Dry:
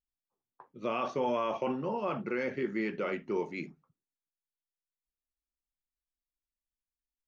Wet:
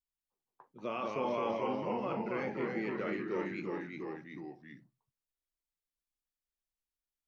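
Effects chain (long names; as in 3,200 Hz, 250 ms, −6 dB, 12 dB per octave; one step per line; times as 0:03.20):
delay with pitch and tempo change per echo 148 ms, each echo −1 semitone, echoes 3
level −5 dB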